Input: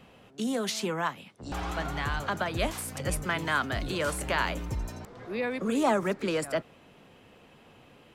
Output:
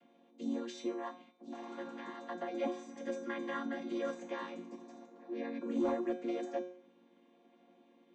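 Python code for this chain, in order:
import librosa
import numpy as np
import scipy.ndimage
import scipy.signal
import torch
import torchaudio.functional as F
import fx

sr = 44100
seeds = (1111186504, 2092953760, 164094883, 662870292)

y = fx.chord_vocoder(x, sr, chord='minor triad', root=58)
y = fx.comb_fb(y, sr, f0_hz=180.0, decay_s=0.56, harmonics='all', damping=0.0, mix_pct=90)
y = 10.0 ** (-30.0 / 20.0) * np.tanh(y / 10.0 ** (-30.0 / 20.0))
y = fx.comb(y, sr, ms=3.7, depth=0.74, at=(2.54, 4.15))
y = F.gain(torch.from_numpy(y), 7.5).numpy()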